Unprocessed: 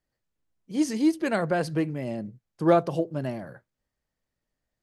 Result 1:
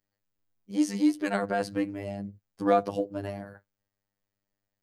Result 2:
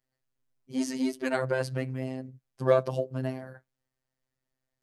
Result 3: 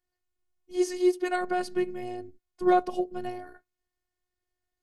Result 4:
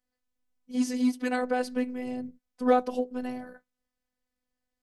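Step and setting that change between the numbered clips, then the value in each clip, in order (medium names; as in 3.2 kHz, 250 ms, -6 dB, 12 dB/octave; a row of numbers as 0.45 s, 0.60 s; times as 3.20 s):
robot voice, frequency: 100 Hz, 130 Hz, 360 Hz, 250 Hz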